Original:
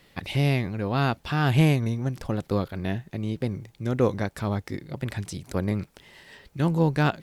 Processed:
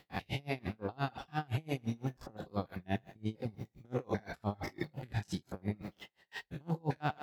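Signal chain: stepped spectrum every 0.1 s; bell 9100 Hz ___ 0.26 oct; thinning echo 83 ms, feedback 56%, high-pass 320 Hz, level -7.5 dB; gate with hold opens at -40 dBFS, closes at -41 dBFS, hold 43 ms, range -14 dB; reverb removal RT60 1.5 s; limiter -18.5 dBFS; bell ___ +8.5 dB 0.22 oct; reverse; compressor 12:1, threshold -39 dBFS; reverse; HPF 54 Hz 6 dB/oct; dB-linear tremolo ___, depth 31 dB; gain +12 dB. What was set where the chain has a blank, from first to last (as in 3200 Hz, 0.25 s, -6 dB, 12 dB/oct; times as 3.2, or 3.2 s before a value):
-10 dB, 770 Hz, 5.8 Hz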